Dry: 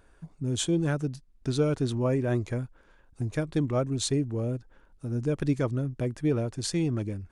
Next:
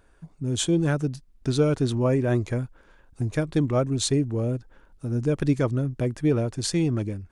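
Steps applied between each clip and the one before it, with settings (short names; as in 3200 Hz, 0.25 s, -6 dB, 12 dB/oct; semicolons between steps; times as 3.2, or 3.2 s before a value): AGC gain up to 4 dB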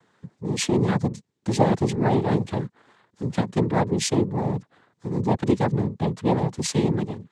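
noise vocoder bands 6; gain +1.5 dB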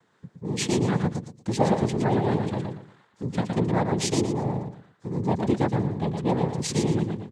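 feedback echo 0.116 s, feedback 26%, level -5 dB; gain -3 dB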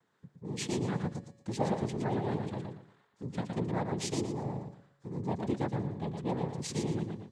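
resonator 140 Hz, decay 1.5 s, mix 40%; gain -5 dB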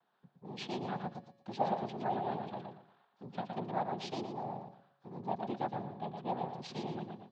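speaker cabinet 240–4200 Hz, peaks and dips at 300 Hz -8 dB, 460 Hz -7 dB, 740 Hz +8 dB, 2000 Hz -8 dB; gain -1 dB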